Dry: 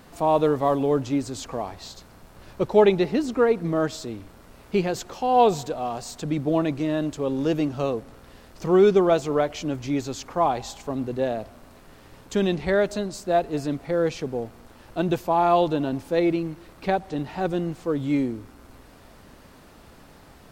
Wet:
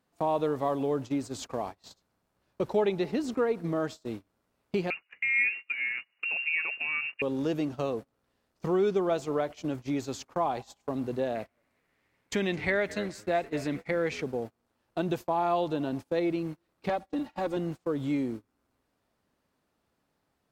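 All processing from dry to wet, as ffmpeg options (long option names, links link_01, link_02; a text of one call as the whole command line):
ffmpeg -i in.wav -filter_complex "[0:a]asettb=1/sr,asplit=3[link_01][link_02][link_03];[link_01]atrim=end=4.904[link_04];[link_02]atrim=start=4.9:end=7.22,asetpts=PTS-STARTPTS,afade=type=in:duration=0.004:curve=qsin,afade=type=out:start_time=2.316:duration=0.004:curve=qsin,equalizer=frequency=290:width_type=o:width=0.42:gain=-11,lowpass=frequency=2500:width_type=q:width=0.5098,lowpass=frequency=2500:width_type=q:width=0.6013,lowpass=frequency=2500:width_type=q:width=0.9,lowpass=frequency=2500:width_type=q:width=2.563,afreqshift=-2900[link_05];[link_03]atrim=start=7.216[link_06];[link_04][link_05]acrossfade=duration=0.004:curve1=hsin:curve2=qsin[link_07];[link_07][link_06]acrossfade=duration=0.004:curve1=qsin:curve2=hsin,asettb=1/sr,asplit=3[link_08][link_09][link_10];[link_08]atrim=end=11.354[link_11];[link_09]atrim=start=11.35:end=14.22,asetpts=PTS-STARTPTS,afade=type=in:duration=0.004:curve=qsin,afade=type=out:start_time=2.866:duration=0.004:curve=qsin,equalizer=frequency=2100:width=2.4:gain=13.5,asplit=4[link_12][link_13][link_14][link_15];[link_13]adelay=218,afreqshift=-98,volume=-18dB[link_16];[link_14]adelay=436,afreqshift=-196,volume=-27.1dB[link_17];[link_15]adelay=654,afreqshift=-294,volume=-36.2dB[link_18];[link_12][link_16][link_17][link_18]amix=inputs=4:normalize=0,atrim=end_sample=126567[link_19];[link_10]atrim=start=14.216[link_20];[link_11][link_19]acrossfade=duration=0.004:curve1=hsin:curve2=qsin[link_21];[link_21][link_20]acrossfade=duration=0.004:curve1=qsin:curve2=hsin,asettb=1/sr,asplit=3[link_22][link_23][link_24];[link_22]atrim=end=16.894[link_25];[link_23]atrim=start=16.89:end=17.57,asetpts=PTS-STARTPTS,afade=type=in:duration=0.004:curve=qsin,afade=type=out:start_time=0.676:duration=0.004:curve=qsin,aecho=1:1:3.6:0.88,atrim=end_sample=29988,aeval=exprs='(tanh(5.01*val(0)+0.55)-tanh(0.55))/5.01':channel_layout=same[link_26];[link_24]atrim=start=17.566[link_27];[link_25][link_26]acrossfade=duration=0.004:curve1=hsin:curve2=qsin[link_28];[link_28][link_27]acrossfade=duration=0.004:curve1=qsin:curve2=hsin,acompressor=threshold=-38dB:ratio=2,highpass=frequency=98:poles=1,agate=range=-30dB:threshold=-39dB:ratio=16:detection=peak,volume=4dB" out.wav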